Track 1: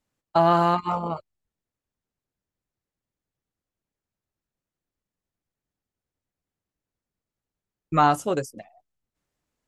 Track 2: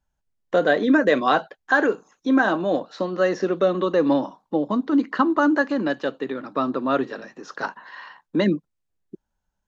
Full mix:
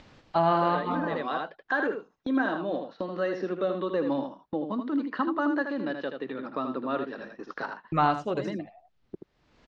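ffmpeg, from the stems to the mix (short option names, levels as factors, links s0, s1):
-filter_complex "[0:a]volume=0.562,asplit=3[s0][s1][s2];[s1]volume=0.299[s3];[1:a]agate=range=0.1:threshold=0.0141:ratio=16:detection=peak,volume=0.355,asplit=2[s4][s5];[s5]volume=0.447[s6];[s2]apad=whole_len=426463[s7];[s4][s7]sidechaincompress=threshold=0.02:ratio=8:attack=16:release=860[s8];[s3][s6]amix=inputs=2:normalize=0,aecho=0:1:79:1[s9];[s0][s8][s9]amix=inputs=3:normalize=0,acompressor=mode=upward:threshold=0.0398:ratio=2.5,lowpass=f=4700:w=0.5412,lowpass=f=4700:w=1.3066"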